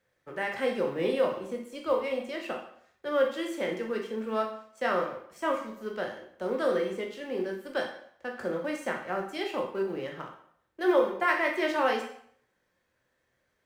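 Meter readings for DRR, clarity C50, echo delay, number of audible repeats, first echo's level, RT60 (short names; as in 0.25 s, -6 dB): 1.0 dB, 6.5 dB, none, none, none, 0.65 s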